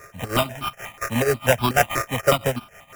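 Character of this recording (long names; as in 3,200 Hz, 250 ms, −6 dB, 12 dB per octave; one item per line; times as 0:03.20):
a buzz of ramps at a fixed pitch in blocks of 8 samples
tremolo triangle 6.2 Hz, depth 85%
aliases and images of a low sample rate 4,300 Hz, jitter 0%
notches that jump at a steady rate 8.2 Hz 850–1,900 Hz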